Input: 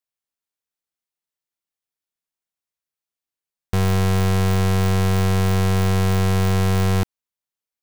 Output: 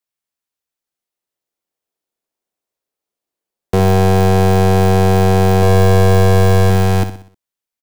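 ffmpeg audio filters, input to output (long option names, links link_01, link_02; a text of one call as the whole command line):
ffmpeg -i in.wav -filter_complex "[0:a]asettb=1/sr,asplit=3[link_01][link_02][link_03];[link_01]atrim=end=5.624[link_04];[link_02]atrim=start=5.62:end=6.7,asetpts=PTS-STARTPTS,afade=type=in:duration=0.004:curve=qsin,afade=type=out:start_time=1.076:duration=0.004:curve=qsin,aecho=1:1:1.8:0.55,atrim=end_sample=47628[link_05];[link_03]atrim=start=6.696[link_06];[link_04][link_05]acrossfade=duration=0.004:curve1=hsin:curve2=qsin[link_07];[link_07][link_06]acrossfade=duration=0.004:curve1=qsin:curve2=hsin,acrossover=split=280|700|4100[link_08][link_09][link_10][link_11];[link_09]dynaudnorm=framelen=290:gausssize=9:maxgain=13dB[link_12];[link_08][link_12][link_10][link_11]amix=inputs=4:normalize=0,aecho=1:1:62|124|186|248|310:0.316|0.139|0.0612|0.0269|0.0119,volume=3dB" out.wav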